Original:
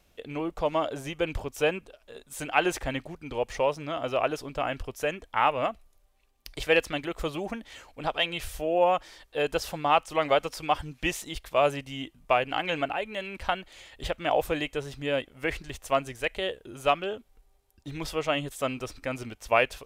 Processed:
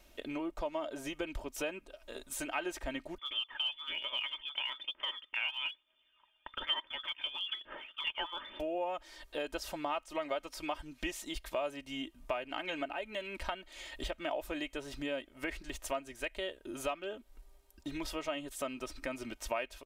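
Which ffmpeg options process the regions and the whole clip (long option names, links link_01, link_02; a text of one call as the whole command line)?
ffmpeg -i in.wav -filter_complex "[0:a]asettb=1/sr,asplit=3[link_01][link_02][link_03];[link_01]atrim=end=3.184[link_04];[link_02]atrim=start=3.18:end=8.6,asetpts=PTS-STARTPTS,afade=type=in:duration=0.004:curve=qsin,afade=type=out:start_time=5.416:duration=0.004:curve=qsin,highpass=95,lowpass=frequency=3100:width_type=q:width=0.5098,lowpass=frequency=3100:width_type=q:width=0.6013,lowpass=frequency=3100:width_type=q:width=0.9,lowpass=frequency=3100:width_type=q:width=2.563,afreqshift=-3600,aphaser=in_gain=1:out_gain=1:delay=1.4:decay=0.48:speed=1.1:type=triangular[link_05];[link_03]atrim=start=8.596[link_06];[link_04][link_05]acrossfade=duration=0.004:curve1=hsin:curve2=qsin[link_07];[link_07][link_06]acrossfade=duration=0.004:curve1=qsin:curve2=hsin,equalizer=frequency=100:width=1.9:gain=-10.5,aecho=1:1:3.2:0.57,acompressor=threshold=-41dB:ratio=3,volume=2dB" out.wav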